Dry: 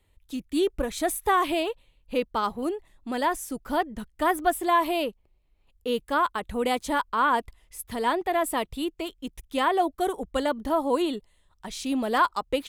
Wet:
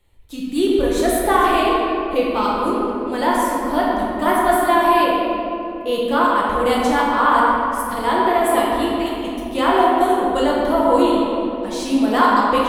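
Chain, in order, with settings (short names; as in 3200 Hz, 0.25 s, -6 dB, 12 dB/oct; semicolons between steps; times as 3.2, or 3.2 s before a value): shoebox room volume 130 m³, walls hard, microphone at 0.82 m; gain +2 dB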